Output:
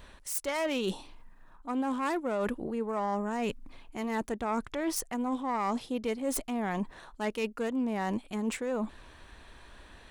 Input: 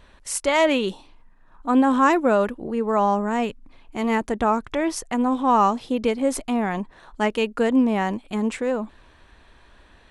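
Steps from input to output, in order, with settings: self-modulated delay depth 0.084 ms; treble shelf 8.3 kHz +10 dB; reverse; compression 6:1, threshold -29 dBFS, peak gain reduction 15 dB; reverse

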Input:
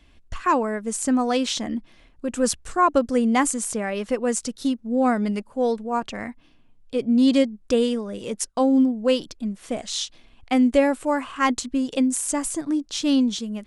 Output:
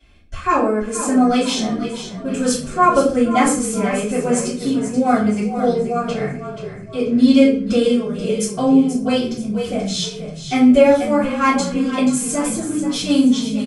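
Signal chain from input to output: comb of notches 960 Hz; frequency-shifting echo 482 ms, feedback 44%, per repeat -34 Hz, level -10 dB; simulated room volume 46 m³, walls mixed, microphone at 2.9 m; trim -7.5 dB

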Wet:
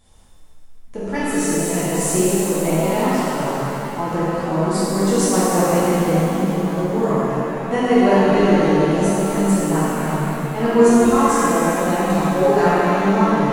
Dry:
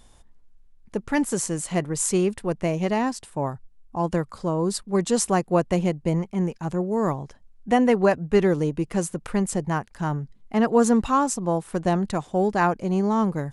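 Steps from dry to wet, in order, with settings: 12.17–12.62 s: comb 7.2 ms, depth 96%; pitch-shifted reverb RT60 3.1 s, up +7 st, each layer -8 dB, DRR -10.5 dB; trim -5.5 dB

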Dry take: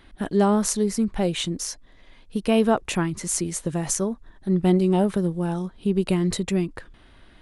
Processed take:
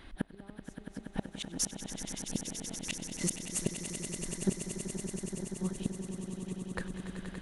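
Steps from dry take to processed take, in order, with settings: inverted gate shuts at -17 dBFS, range -37 dB; echo with a slow build-up 95 ms, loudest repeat 8, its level -11 dB

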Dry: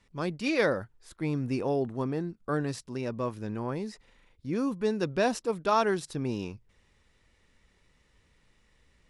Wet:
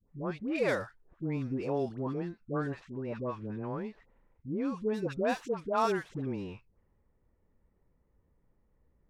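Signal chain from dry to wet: median filter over 9 samples; level-controlled noise filter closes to 780 Hz, open at -22 dBFS; phase dispersion highs, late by 93 ms, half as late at 800 Hz; trim -3.5 dB

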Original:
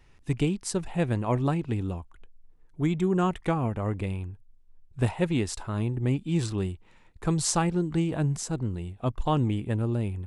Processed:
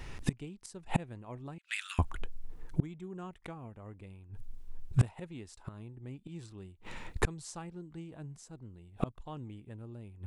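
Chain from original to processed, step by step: 1.58–1.99 s: steep high-pass 1.4 kHz 48 dB/octave; inverted gate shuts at -28 dBFS, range -33 dB; trim +14 dB

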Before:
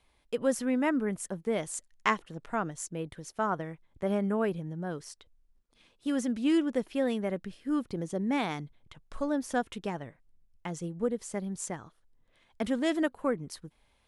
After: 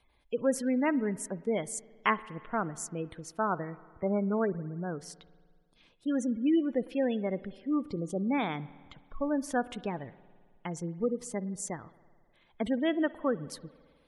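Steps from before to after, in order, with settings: spectral gate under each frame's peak -25 dB strong; spring tank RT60 1.8 s, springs 53 ms, chirp 20 ms, DRR 18 dB

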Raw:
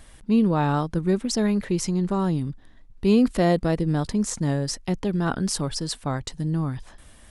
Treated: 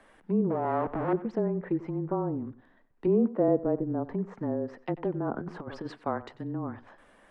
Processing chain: 0.50–1.13 s: Schmitt trigger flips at -35.5 dBFS; 3.06–3.48 s: high-pass 150 Hz; low-pass that closes with the level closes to 660 Hz, closed at -19 dBFS; on a send: tape echo 92 ms, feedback 23%, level -16 dB, low-pass 4.5 kHz; on the sum: frequency shift -23 Hz; three-band isolator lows -19 dB, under 240 Hz, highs -19 dB, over 2.2 kHz; 5.38–5.92 s: compressor with a negative ratio -35 dBFS, ratio -0.5

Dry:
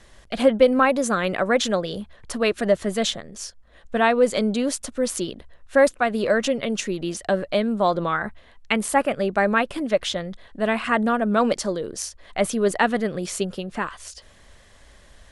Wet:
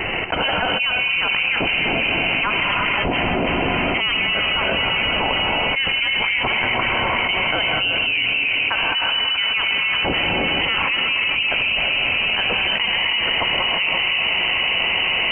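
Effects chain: steep high-pass 790 Hz 96 dB/octave; peaking EQ 2 kHz -9.5 dB 0.34 oct; band-stop 2.6 kHz, Q 27; echo that smears into a reverb 511 ms, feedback 63%, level -10 dB; gated-style reverb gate 370 ms rising, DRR 3 dB; frequency inversion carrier 3.8 kHz; level flattener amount 100%; trim -3.5 dB

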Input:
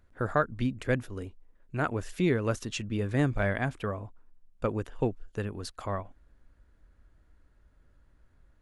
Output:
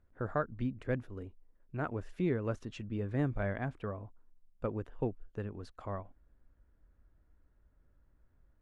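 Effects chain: low-pass 1.3 kHz 6 dB/octave; trim -5.5 dB

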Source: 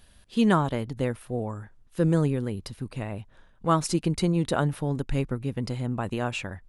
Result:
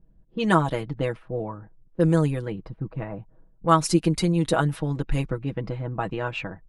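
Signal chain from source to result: comb 6.2 ms, depth 71%; harmonic-percussive split harmonic -5 dB; level-controlled noise filter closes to 330 Hz, open at -22 dBFS; trim +2.5 dB

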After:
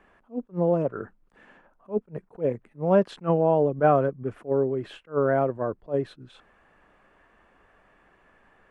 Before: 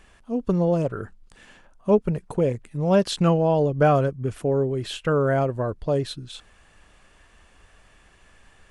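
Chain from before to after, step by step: three-band isolator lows -13 dB, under 170 Hz, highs -21 dB, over 2.1 kHz; attacks held to a fixed rise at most 320 dB/s

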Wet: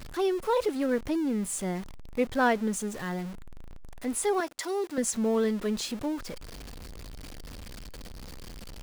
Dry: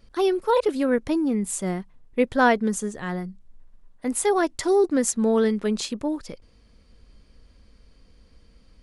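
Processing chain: jump at every zero crossing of -30.5 dBFS; 4.40–4.98 s: high-pass 700 Hz 6 dB/octave; trim -6.5 dB

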